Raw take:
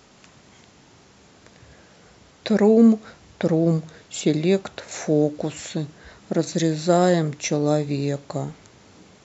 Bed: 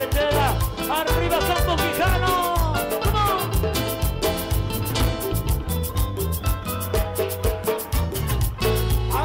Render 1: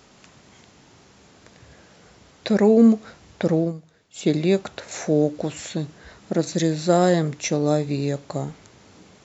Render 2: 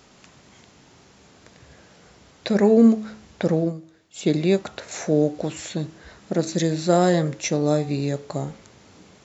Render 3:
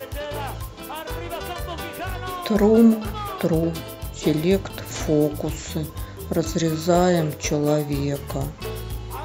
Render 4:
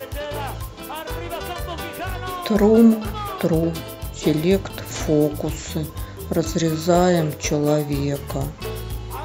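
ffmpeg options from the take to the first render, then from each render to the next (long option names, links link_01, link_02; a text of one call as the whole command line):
ffmpeg -i in.wav -filter_complex "[0:a]asplit=3[link_01][link_02][link_03];[link_01]atrim=end=3.73,asetpts=PTS-STARTPTS,afade=type=out:start_time=3.59:duration=0.14:silence=0.199526[link_04];[link_02]atrim=start=3.73:end=4.14,asetpts=PTS-STARTPTS,volume=-14dB[link_05];[link_03]atrim=start=4.14,asetpts=PTS-STARTPTS,afade=type=in:duration=0.14:silence=0.199526[link_06];[link_04][link_05][link_06]concat=n=3:v=0:a=1" out.wav
ffmpeg -i in.wav -af "bandreject=frequency=107.6:width_type=h:width=4,bandreject=frequency=215.2:width_type=h:width=4,bandreject=frequency=322.8:width_type=h:width=4,bandreject=frequency=430.4:width_type=h:width=4,bandreject=frequency=538:width_type=h:width=4,bandreject=frequency=645.6:width_type=h:width=4,bandreject=frequency=753.2:width_type=h:width=4,bandreject=frequency=860.8:width_type=h:width=4,bandreject=frequency=968.4:width_type=h:width=4,bandreject=frequency=1076:width_type=h:width=4,bandreject=frequency=1183.6:width_type=h:width=4,bandreject=frequency=1291.2:width_type=h:width=4,bandreject=frequency=1398.8:width_type=h:width=4,bandreject=frequency=1506.4:width_type=h:width=4,bandreject=frequency=1614:width_type=h:width=4,bandreject=frequency=1721.6:width_type=h:width=4,bandreject=frequency=1829.2:width_type=h:width=4,bandreject=frequency=1936.8:width_type=h:width=4" out.wav
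ffmpeg -i in.wav -i bed.wav -filter_complex "[1:a]volume=-10dB[link_01];[0:a][link_01]amix=inputs=2:normalize=0" out.wav
ffmpeg -i in.wav -af "volume=1.5dB" out.wav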